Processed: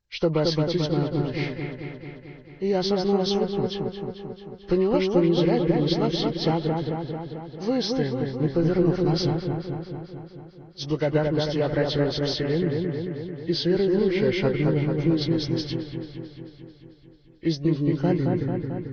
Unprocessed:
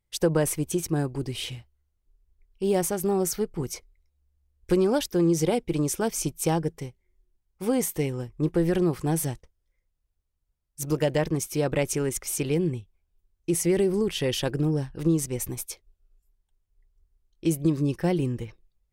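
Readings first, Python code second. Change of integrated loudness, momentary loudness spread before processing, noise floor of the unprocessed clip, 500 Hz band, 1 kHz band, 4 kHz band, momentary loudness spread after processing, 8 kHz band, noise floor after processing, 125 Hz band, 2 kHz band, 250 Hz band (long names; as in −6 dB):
+2.0 dB, 12 LU, −77 dBFS, +3.0 dB, +3.0 dB, +6.0 dB, 15 LU, −15.0 dB, −49 dBFS, +3.0 dB, +2.5 dB, +3.0 dB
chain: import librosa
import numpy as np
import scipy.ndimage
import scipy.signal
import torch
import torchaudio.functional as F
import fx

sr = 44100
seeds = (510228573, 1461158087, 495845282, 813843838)

y = fx.freq_compress(x, sr, knee_hz=1000.0, ratio=1.5)
y = fx.echo_wet_lowpass(y, sr, ms=221, feedback_pct=66, hz=2100.0, wet_db=-3.0)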